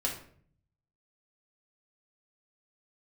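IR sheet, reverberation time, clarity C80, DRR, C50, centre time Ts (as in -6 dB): 0.55 s, 11.5 dB, -3.0 dB, 7.0 dB, 24 ms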